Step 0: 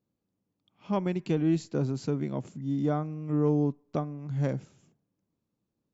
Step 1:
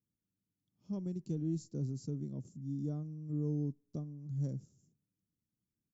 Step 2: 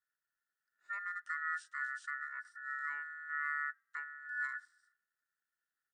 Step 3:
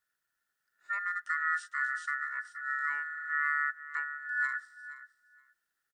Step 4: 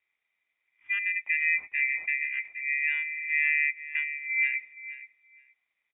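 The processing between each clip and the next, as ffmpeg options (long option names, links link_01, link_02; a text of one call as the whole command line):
ffmpeg -i in.wav -af "firequalizer=gain_entry='entry(110,0);entry(790,-21);entry(2300,-27);entry(5500,-1)':delay=0.05:min_phase=1,volume=-5.5dB" out.wav
ffmpeg -i in.wav -af "aeval=exprs='val(0)*sin(2*PI*1600*n/s)':channel_layout=same" out.wav
ffmpeg -i in.wav -af "aecho=1:1:472|944:0.178|0.0267,volume=7dB" out.wav
ffmpeg -i in.wav -af "lowpass=frequency=3200:width_type=q:width=0.5098,lowpass=frequency=3200:width_type=q:width=0.6013,lowpass=frequency=3200:width_type=q:width=0.9,lowpass=frequency=3200:width_type=q:width=2.563,afreqshift=-3800,volume=5dB" out.wav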